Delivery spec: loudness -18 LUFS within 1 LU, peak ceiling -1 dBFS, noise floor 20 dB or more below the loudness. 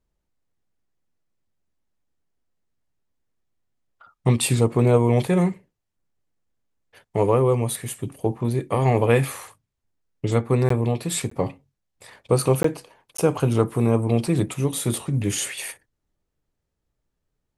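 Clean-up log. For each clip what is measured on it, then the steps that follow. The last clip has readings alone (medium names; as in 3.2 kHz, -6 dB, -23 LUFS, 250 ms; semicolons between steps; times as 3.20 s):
dropouts 4; longest dropout 14 ms; loudness -22.5 LUFS; peak level -4.0 dBFS; loudness target -18.0 LUFS
-> interpolate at 10.69/11.30/12.63/13.17 s, 14 ms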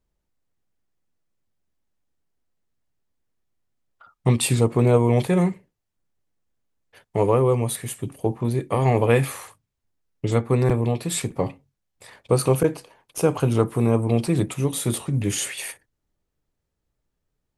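dropouts 0; loudness -22.5 LUFS; peak level -4.0 dBFS; loudness target -18.0 LUFS
-> trim +4.5 dB; peak limiter -1 dBFS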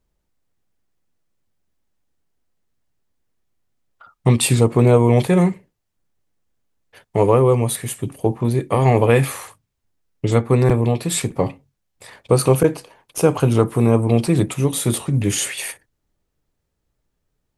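loudness -18.0 LUFS; peak level -1.0 dBFS; noise floor -75 dBFS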